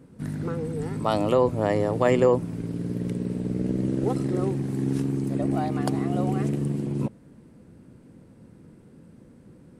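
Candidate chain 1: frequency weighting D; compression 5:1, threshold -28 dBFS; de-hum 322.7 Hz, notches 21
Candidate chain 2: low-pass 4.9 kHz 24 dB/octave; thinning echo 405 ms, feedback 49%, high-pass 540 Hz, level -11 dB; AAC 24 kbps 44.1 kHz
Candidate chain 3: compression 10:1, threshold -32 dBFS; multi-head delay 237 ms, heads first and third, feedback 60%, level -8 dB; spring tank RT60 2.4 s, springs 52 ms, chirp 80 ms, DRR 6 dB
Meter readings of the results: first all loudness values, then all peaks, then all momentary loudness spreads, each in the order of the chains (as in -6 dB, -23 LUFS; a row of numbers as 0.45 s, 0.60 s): -33.0 LUFS, -25.0 LUFS, -34.5 LUFS; -14.5 dBFS, -6.0 dBFS, -19.0 dBFS; 6 LU, 9 LU, 15 LU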